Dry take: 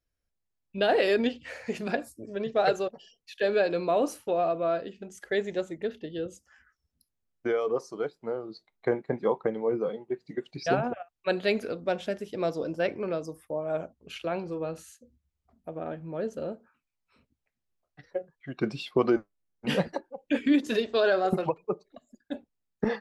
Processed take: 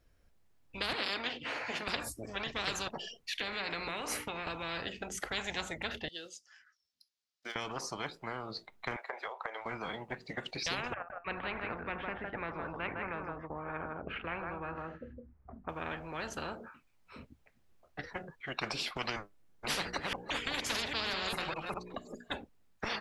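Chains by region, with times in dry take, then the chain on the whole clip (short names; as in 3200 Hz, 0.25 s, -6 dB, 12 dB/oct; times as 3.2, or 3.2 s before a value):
0.93–1.88 three-band isolator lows -22 dB, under 180 Hz, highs -13 dB, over 4500 Hz + notch comb 190 Hz
3.33–4.47 bell 2100 Hz +13.5 dB 0.36 oct + notches 60/120/180/240/300/360/420/480 Hz + compressor 2.5:1, threshold -36 dBFS
6.08–7.56 block floating point 7-bit + band-pass 4800 Hz, Q 2.3
8.96–9.66 elliptic high-pass 610 Hz, stop band 80 dB + compressor 4:1, threshold -45 dBFS
10.94–15.69 LPF 1800 Hz 24 dB/oct + echo 0.159 s -10 dB
19.73–22.34 reverse delay 0.201 s, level -10 dB + notches 60/120/180/240/300/360/420/480 Hz
whole clip: high shelf 3400 Hz -9.5 dB; spectral compressor 10:1; gain -5 dB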